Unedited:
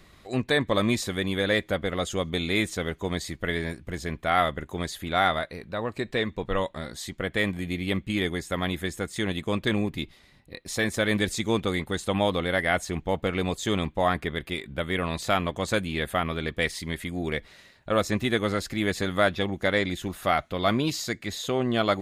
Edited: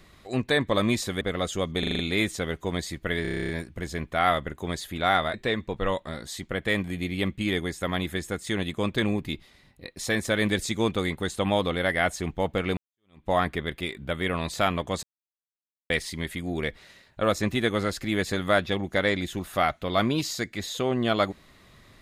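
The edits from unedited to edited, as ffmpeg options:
-filter_complex "[0:a]asplit=20[a][b][c][d][e][f][g][h][i][j][k][l][m][n][o][p][q][r][s][t];[a]atrim=end=1.212[u];[b]atrim=start=1.788:end=2.412[v];[c]atrim=start=2.368:end=2.412[w];[d]atrim=start=2.368:end=2.412[x];[e]atrim=start=2.368:end=2.412[y];[f]atrim=start=2.368:end=2.412[z];[g]atrim=start=2.368:end=3.632[aa];[h]atrim=start=3.598:end=3.632[ab];[i]atrim=start=3.598:end=3.632[ac];[j]atrim=start=3.598:end=3.632[ad];[k]atrim=start=3.598:end=3.632[ae];[l]atrim=start=3.598:end=3.632[af];[m]atrim=start=3.598:end=3.632[ag];[n]atrim=start=3.598:end=3.632[ah];[o]atrim=start=3.598:end=3.632[ai];[p]atrim=start=3.598:end=5.452[aj];[q]atrim=start=6.028:end=13.46,asetpts=PTS-STARTPTS,afade=t=out:st=7.428:d=0.004:c=hsin[ak];[r]atrim=start=13.46:end=15.72,asetpts=PTS-STARTPTS,afade=t=in:d=0.51:c=exp,afade=t=out:st=2.256:d=0.004:c=hsin[al];[s]atrim=start=15.72:end=16.59,asetpts=PTS-STARTPTS,volume=0[am];[t]atrim=start=16.59,asetpts=PTS-STARTPTS,afade=t=in:d=0.004:c=hsin[an];[u][v]acrossfade=d=0.004:c1=hsin:c2=hsin[ao];[ao][w]acrossfade=d=0.004:c1=hsin:c2=hsin[ap];[ap][x]acrossfade=d=0.004:c1=hsin:c2=hsin[aq];[aq][y]acrossfade=d=0.004:c1=hsin:c2=hsin[ar];[ar][z]acrossfade=d=0.004:c1=hsin:c2=hsin[as];[as][aa]acrossfade=d=0.004:c1=hsin:c2=hsin[at];[at][ab]acrossfade=d=0.004:c1=hsin:c2=hsin[au];[au][ac]acrossfade=d=0.004:c1=hsin:c2=hsin[av];[av][ad]acrossfade=d=0.004:c1=hsin:c2=hsin[aw];[aw][ae]acrossfade=d=0.004:c1=hsin:c2=hsin[ax];[ax][af]acrossfade=d=0.004:c1=hsin:c2=hsin[ay];[ay][ag]acrossfade=d=0.004:c1=hsin:c2=hsin[az];[az][ah]acrossfade=d=0.004:c1=hsin:c2=hsin[ba];[ba][ai]acrossfade=d=0.004:c1=hsin:c2=hsin[bb];[bb][aj]acrossfade=d=0.004:c1=hsin:c2=hsin[bc];[ak][al][am][an]concat=n=4:v=0:a=1[bd];[bc][bd]acrossfade=d=0.004:c1=hsin:c2=hsin"

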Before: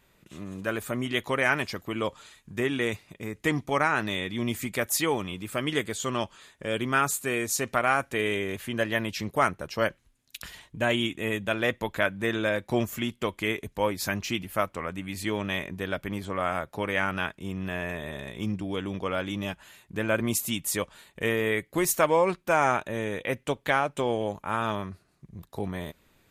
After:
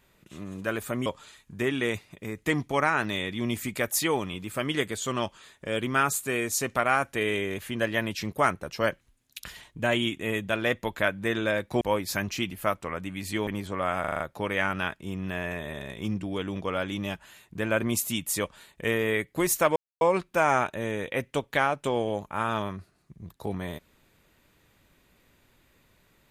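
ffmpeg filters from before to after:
-filter_complex "[0:a]asplit=10[a][b][c][d][e][f][g][h][i][j];[a]atrim=end=1.062[k];[b]atrim=start=2.038:end=12.792[l];[c]atrim=start=13.728:end=15.392[m];[d]atrim=start=16.048:end=16.622[n];[e]atrim=start=16.578:end=16.622[o];[f]atrim=start=16.578:end=16.622[p];[g]atrim=start=16.578:end=16.622[q];[h]atrim=start=16.578:end=16.622[r];[i]atrim=start=16.578:end=22.14,asetpts=PTS-STARTPTS,afade=t=out:st=5.558:d=0.004:c=hsin,apad=pad_dur=0.25[s];[j]atrim=start=22.14,asetpts=PTS-STARTPTS,afade=t=in:d=0.004:c=hsin[t];[k][l]acrossfade=d=0.004:c1=hsin:c2=hsin[u];[u][m]acrossfade=d=0.004:c1=hsin:c2=hsin[v];[v][n]acrossfade=d=0.004:c1=hsin:c2=hsin[w];[w][o]acrossfade=d=0.004:c1=hsin:c2=hsin[x];[x][p]acrossfade=d=0.004:c1=hsin:c2=hsin[y];[y][q]acrossfade=d=0.004:c1=hsin:c2=hsin[z];[z][r]acrossfade=d=0.004:c1=hsin:c2=hsin[aa];[s][t]concat=n=2:v=0:a=1[ab];[aa][ab]acrossfade=d=0.004:c1=hsin:c2=hsin"

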